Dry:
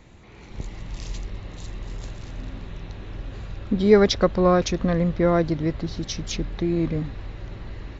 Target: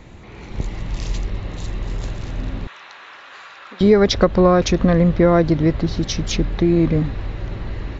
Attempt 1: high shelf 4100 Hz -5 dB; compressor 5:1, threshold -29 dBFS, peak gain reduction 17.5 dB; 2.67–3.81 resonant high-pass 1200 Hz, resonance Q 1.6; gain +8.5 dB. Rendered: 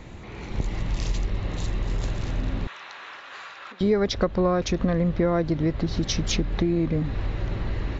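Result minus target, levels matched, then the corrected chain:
compressor: peak gain reduction +9 dB
high shelf 4100 Hz -5 dB; compressor 5:1, threshold -18 dBFS, peak gain reduction 8.5 dB; 2.67–3.81 resonant high-pass 1200 Hz, resonance Q 1.6; gain +8.5 dB

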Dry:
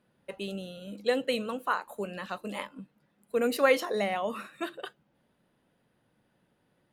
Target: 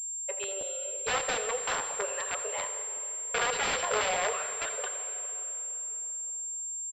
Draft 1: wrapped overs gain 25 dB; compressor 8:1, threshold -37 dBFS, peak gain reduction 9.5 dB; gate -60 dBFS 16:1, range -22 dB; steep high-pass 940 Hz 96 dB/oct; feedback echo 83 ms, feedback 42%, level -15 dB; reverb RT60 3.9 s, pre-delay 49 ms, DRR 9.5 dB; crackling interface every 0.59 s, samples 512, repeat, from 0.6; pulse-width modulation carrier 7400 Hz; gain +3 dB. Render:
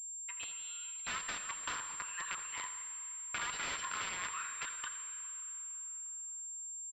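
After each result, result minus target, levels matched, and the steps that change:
500 Hz band -16.0 dB; compressor: peak gain reduction +9.5 dB
change: steep high-pass 410 Hz 96 dB/oct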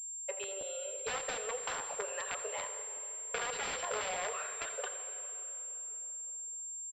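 compressor: peak gain reduction +9.5 dB
remove: compressor 8:1, threshold -37 dBFS, peak gain reduction 9.5 dB

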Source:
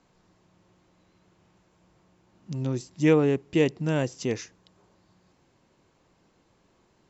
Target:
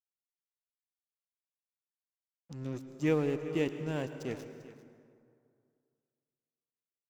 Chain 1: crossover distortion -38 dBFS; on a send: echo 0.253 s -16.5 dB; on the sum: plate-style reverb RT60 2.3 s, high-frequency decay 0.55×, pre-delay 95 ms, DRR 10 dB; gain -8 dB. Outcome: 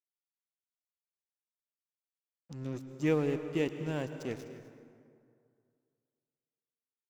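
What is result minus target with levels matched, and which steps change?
echo 0.141 s early
change: echo 0.394 s -16.5 dB

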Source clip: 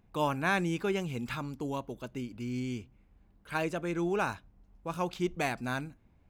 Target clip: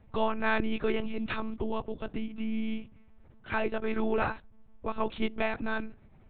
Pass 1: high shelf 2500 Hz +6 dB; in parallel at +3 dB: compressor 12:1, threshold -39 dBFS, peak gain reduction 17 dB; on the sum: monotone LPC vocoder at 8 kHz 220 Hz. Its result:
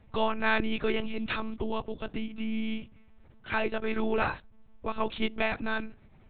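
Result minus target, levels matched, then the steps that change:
4000 Hz band +4.0 dB
change: high shelf 2500 Hz -2.5 dB

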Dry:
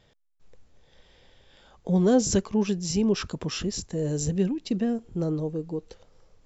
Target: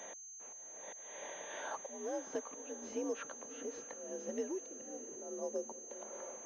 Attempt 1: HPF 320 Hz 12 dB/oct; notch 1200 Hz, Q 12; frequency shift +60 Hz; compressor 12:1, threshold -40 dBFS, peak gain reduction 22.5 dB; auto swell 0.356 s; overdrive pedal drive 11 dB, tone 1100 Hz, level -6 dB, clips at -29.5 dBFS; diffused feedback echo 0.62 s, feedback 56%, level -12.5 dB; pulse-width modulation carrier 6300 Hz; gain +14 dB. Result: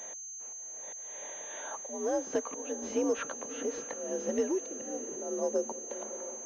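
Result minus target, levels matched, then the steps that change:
compressor: peak gain reduction -9.5 dB
change: compressor 12:1, threshold -50.5 dBFS, peak gain reduction 32.5 dB

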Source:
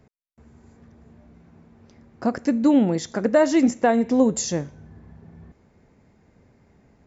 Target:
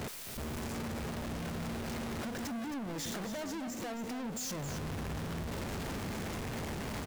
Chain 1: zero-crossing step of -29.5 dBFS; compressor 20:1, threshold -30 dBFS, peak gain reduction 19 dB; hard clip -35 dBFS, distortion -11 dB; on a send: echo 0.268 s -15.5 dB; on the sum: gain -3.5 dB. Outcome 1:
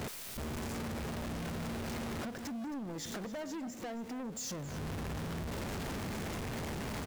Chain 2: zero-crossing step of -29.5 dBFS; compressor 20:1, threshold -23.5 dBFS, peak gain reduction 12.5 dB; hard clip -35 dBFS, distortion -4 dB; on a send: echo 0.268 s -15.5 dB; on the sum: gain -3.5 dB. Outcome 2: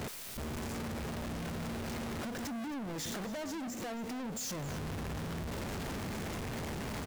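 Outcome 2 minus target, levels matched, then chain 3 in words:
echo-to-direct -6 dB
zero-crossing step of -29.5 dBFS; compressor 20:1, threshold -23.5 dBFS, peak gain reduction 12.5 dB; hard clip -35 dBFS, distortion -4 dB; on a send: echo 0.268 s -9.5 dB; on the sum: gain -3.5 dB

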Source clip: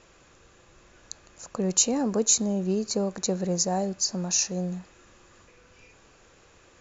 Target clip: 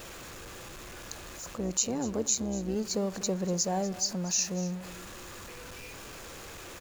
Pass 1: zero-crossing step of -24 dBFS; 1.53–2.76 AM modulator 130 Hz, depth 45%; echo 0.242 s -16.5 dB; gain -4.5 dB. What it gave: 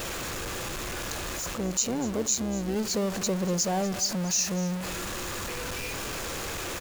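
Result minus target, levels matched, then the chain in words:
zero-crossing step: distortion +9 dB
zero-crossing step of -35.5 dBFS; 1.53–2.76 AM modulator 130 Hz, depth 45%; echo 0.242 s -16.5 dB; gain -4.5 dB

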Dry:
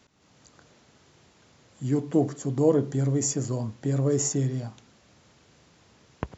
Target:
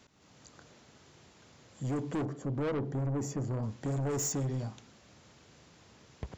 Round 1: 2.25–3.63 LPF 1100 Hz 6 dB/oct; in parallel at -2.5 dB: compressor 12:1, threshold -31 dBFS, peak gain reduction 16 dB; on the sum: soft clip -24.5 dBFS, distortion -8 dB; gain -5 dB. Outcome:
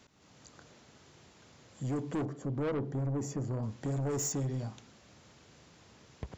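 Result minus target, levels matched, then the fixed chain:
compressor: peak gain reduction +8.5 dB
2.25–3.63 LPF 1100 Hz 6 dB/oct; in parallel at -2.5 dB: compressor 12:1, threshold -22 dBFS, peak gain reduction 7.5 dB; on the sum: soft clip -24.5 dBFS, distortion -7 dB; gain -5 dB

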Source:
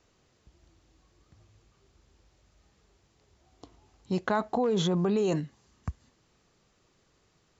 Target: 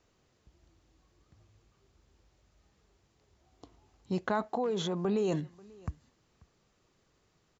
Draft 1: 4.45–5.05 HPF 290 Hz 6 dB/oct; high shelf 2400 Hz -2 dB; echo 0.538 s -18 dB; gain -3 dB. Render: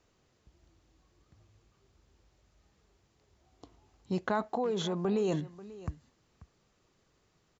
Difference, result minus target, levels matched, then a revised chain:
echo-to-direct +6.5 dB
4.45–5.05 HPF 290 Hz 6 dB/oct; high shelf 2400 Hz -2 dB; echo 0.538 s -24.5 dB; gain -3 dB

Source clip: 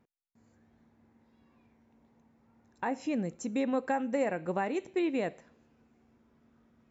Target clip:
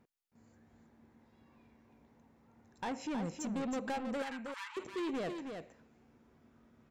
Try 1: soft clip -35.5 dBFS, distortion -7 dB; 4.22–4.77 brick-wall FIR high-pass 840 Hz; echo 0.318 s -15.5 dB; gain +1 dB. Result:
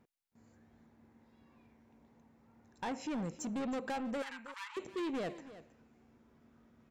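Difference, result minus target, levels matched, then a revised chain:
echo-to-direct -9 dB
soft clip -35.5 dBFS, distortion -7 dB; 4.22–4.77 brick-wall FIR high-pass 840 Hz; echo 0.318 s -6.5 dB; gain +1 dB

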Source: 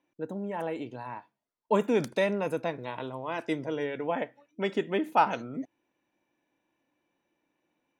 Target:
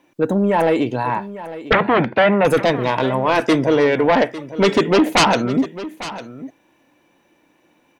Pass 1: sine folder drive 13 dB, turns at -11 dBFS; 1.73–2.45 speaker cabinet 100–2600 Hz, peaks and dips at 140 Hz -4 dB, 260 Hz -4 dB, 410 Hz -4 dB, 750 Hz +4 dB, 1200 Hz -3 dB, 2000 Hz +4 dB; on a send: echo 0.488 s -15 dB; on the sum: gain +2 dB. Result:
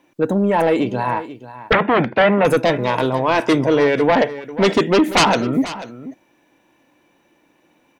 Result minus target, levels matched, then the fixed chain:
echo 0.363 s early
sine folder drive 13 dB, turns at -11 dBFS; 1.73–2.45 speaker cabinet 100–2600 Hz, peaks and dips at 140 Hz -4 dB, 260 Hz -4 dB, 410 Hz -4 dB, 750 Hz +4 dB, 1200 Hz -3 dB, 2000 Hz +4 dB; on a send: echo 0.851 s -15 dB; on the sum: gain +2 dB

